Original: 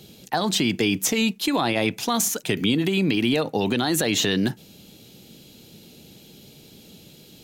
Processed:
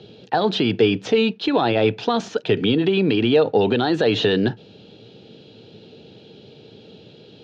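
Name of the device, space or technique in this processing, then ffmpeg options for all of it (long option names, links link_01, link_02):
overdrive pedal into a guitar cabinet: -filter_complex "[0:a]asplit=2[link_01][link_02];[link_02]highpass=frequency=720:poles=1,volume=7dB,asoftclip=type=tanh:threshold=-10.5dB[link_03];[link_01][link_03]amix=inputs=2:normalize=0,lowpass=frequency=2000:poles=1,volume=-6dB,highpass=79,equalizer=frequency=110:width_type=q:width=4:gain=9,equalizer=frequency=440:width_type=q:width=4:gain=8,equalizer=frequency=1100:width_type=q:width=4:gain=-6,equalizer=frequency=2100:width_type=q:width=4:gain=-9,lowpass=frequency=4300:width=0.5412,lowpass=frequency=4300:width=1.3066,volume=4.5dB"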